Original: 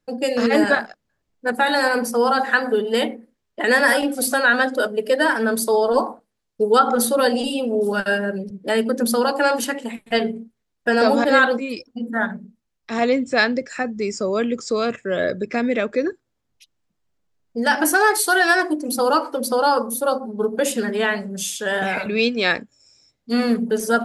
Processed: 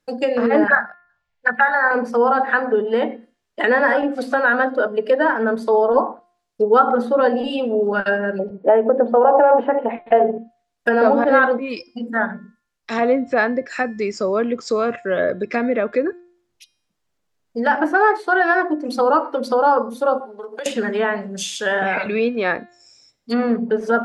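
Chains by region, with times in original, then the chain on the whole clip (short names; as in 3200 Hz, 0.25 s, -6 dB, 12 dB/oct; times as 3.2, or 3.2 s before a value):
0.67–1.91 EQ curve 210 Hz 0 dB, 300 Hz -17 dB, 820 Hz 0 dB, 1700 Hz +12 dB, 3400 Hz +1 dB, 12000 Hz -17 dB + envelope phaser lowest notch 210 Hz, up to 2800 Hz, full sweep at -10.5 dBFS
8.39–10.38 compressor 5:1, threshold -21 dBFS + EQ curve 210 Hz 0 dB, 740 Hz +15 dB, 1200 Hz +4 dB, 3100 Hz -4 dB, 6700 Hz -29 dB
20.2–20.66 compressor 10:1, threshold -26 dBFS + three-band isolator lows -21 dB, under 380 Hz, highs -14 dB, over 7600 Hz
whole clip: treble ducked by the level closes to 1300 Hz, closed at -16.5 dBFS; low shelf 310 Hz -7.5 dB; de-hum 351.6 Hz, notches 31; gain +4.5 dB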